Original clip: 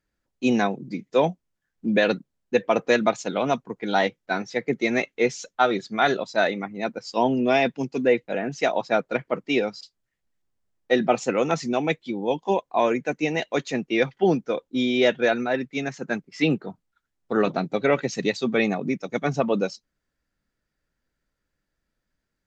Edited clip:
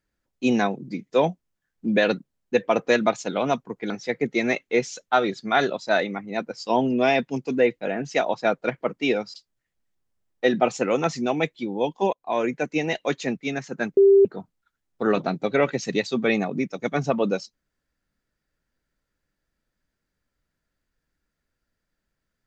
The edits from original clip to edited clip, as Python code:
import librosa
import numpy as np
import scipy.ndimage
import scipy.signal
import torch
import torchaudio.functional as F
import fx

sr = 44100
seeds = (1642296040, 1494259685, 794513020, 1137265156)

y = fx.edit(x, sr, fx.cut(start_s=3.9, length_s=0.47),
    fx.fade_in_from(start_s=12.6, length_s=0.37, floor_db=-19.0),
    fx.cut(start_s=13.84, length_s=1.83),
    fx.bleep(start_s=16.27, length_s=0.28, hz=394.0, db=-10.5), tone=tone)